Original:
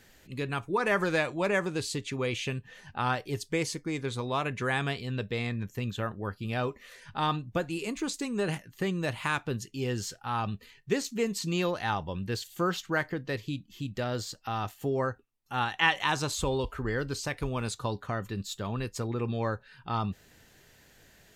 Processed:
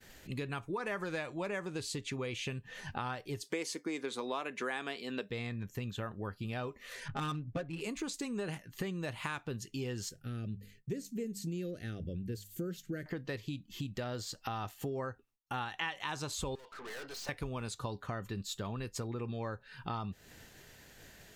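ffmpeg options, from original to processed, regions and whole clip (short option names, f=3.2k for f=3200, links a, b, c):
-filter_complex "[0:a]asettb=1/sr,asplit=3[a][b][c];[a]atrim=end=3.434[d];[b]atrim=start=3.43:end=5.3,asetpts=PTS-STARTPTS,afade=t=in:d=0.004:c=qsin,afade=t=out:st=1.866:d=0.004:c=qsin,highpass=f=240:w=0.5412,highpass=f=240:w=1.3066,acontrast=27[e];[c]atrim=start=5.296[f];[d][e]acrossfade=d=0.004:c1=hsin:c2=qsin[g];[g][f]acrossfade=d=0.004:c1=qsin:c2=hsin,asettb=1/sr,asplit=3[h][i][j];[h]atrim=end=7.084[k];[i]atrim=start=7.08:end=7.81,asetpts=PTS-STARTPTS,afade=t=in:d=0.004:c=qsin,afade=t=out:st=0.726:d=0.004:c=qsin,equalizer=f=960:t=o:w=0.43:g=-10,aecho=1:1:7.3:0.99,atrim=end_sample=32193,adynamicsmooth=sensitivity=5:basefreq=1.2k[l];[j]atrim=start=7.806[m];[k][l]acrossfade=d=0.004:c1=hsin:c2=qsin[n];[n][m]acrossfade=d=0.004:c1=qsin:c2=hsin,asettb=1/sr,asplit=3[o][p][q];[o]atrim=end=10.094[r];[p]atrim=start=10.09:end=13.06,asetpts=PTS-STARTPTS,afade=t=in:d=0.004:c=qsin,afade=t=out:st=2.966:d=0.004:c=qsin,asuperstop=centerf=930:order=4:qfactor=0.7,equalizer=f=3.2k:t=o:w=2.5:g=-13.5,bandreject=f=50:t=h:w=6,bandreject=f=100:t=h:w=6,bandreject=f=150:t=h:w=6,bandreject=f=200:t=h:w=6[s];[q]atrim=start=13.056[t];[r][s]acrossfade=d=0.004:c1=hsin:c2=qsin[u];[u][t]acrossfade=d=0.004:c1=qsin:c2=hsin,asettb=1/sr,asplit=3[v][w][x];[v]atrim=end=16.554[y];[w]atrim=start=16.55:end=17.29,asetpts=PTS-STARTPTS,afade=t=in:d=0.004:c=qsin,afade=t=out:st=0.736:d=0.004:c=qsin,highpass=550,lowpass=5.6k,aeval=exprs='(tanh(282*val(0)+0.35)-tanh(0.35))/282':c=same[z];[x]atrim=start=17.286[aa];[y][z]acrossfade=d=0.004:c1=hsin:c2=qsin[ab];[ab][aa]acrossfade=d=0.004:c1=qsin:c2=hsin,agate=range=-33dB:threshold=-54dB:ratio=3:detection=peak,acompressor=threshold=-44dB:ratio=4,volume=6dB"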